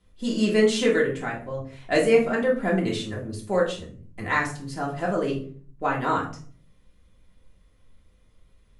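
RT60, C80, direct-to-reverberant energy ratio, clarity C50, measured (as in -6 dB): 0.50 s, 13.5 dB, -4.0 dB, 8.0 dB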